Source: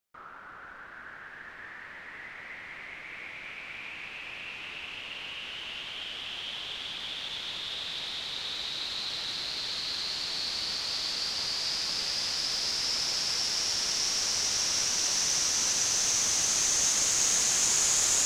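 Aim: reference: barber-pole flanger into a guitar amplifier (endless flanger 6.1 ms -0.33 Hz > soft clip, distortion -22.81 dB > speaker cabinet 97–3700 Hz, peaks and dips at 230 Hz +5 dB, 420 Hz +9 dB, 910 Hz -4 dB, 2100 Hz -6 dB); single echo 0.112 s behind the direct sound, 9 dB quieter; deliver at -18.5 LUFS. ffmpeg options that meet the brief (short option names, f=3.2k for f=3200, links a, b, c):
-filter_complex "[0:a]aecho=1:1:112:0.355,asplit=2[a][b];[b]adelay=6.1,afreqshift=-0.33[c];[a][c]amix=inputs=2:normalize=1,asoftclip=threshold=-20dB,highpass=97,equalizer=f=230:t=q:w=4:g=5,equalizer=f=420:t=q:w=4:g=9,equalizer=f=910:t=q:w=4:g=-4,equalizer=f=2.1k:t=q:w=4:g=-6,lowpass=f=3.7k:w=0.5412,lowpass=f=3.7k:w=1.3066,volume=21.5dB"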